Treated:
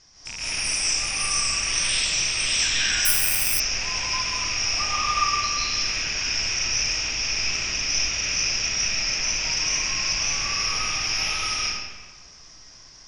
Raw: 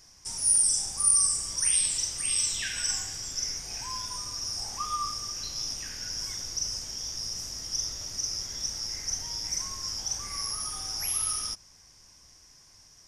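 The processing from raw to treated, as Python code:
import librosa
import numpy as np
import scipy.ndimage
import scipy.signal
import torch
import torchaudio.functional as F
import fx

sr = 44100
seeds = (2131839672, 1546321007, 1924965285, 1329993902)

y = fx.rattle_buzz(x, sr, strikes_db=-51.0, level_db=-25.0)
y = scipy.signal.sosfilt(scipy.signal.bessel(6, 3900.0, 'lowpass', norm='mag', fs=sr, output='sos'), y)
y = fx.high_shelf(y, sr, hz=2900.0, db=9.0)
y = fx.rev_freeverb(y, sr, rt60_s=1.4, hf_ratio=0.75, predelay_ms=110, drr_db=-8.5)
y = fx.resample_bad(y, sr, factor=4, down='filtered', up='zero_stuff', at=(3.05, 3.6))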